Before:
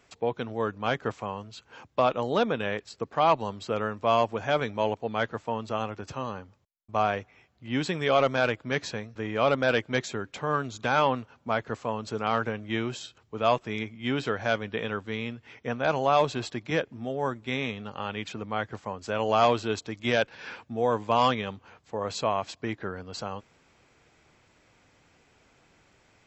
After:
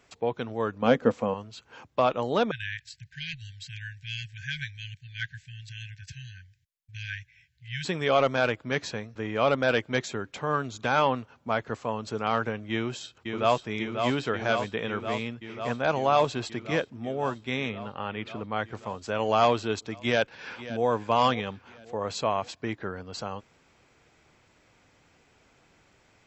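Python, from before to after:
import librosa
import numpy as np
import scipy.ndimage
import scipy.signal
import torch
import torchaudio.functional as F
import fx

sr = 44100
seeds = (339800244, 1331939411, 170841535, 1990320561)

y = fx.small_body(x, sr, hz=(240.0, 490.0), ring_ms=45, db=14, at=(0.82, 1.34))
y = fx.brickwall_bandstop(y, sr, low_hz=160.0, high_hz=1500.0, at=(2.51, 7.85))
y = fx.echo_throw(y, sr, start_s=12.71, length_s=0.95, ms=540, feedback_pct=80, wet_db=-5.5)
y = fx.lowpass(y, sr, hz=3100.0, slope=12, at=(17.69, 18.52))
y = fx.echo_throw(y, sr, start_s=19.96, length_s=0.9, ms=540, feedback_pct=45, wet_db=-14.5)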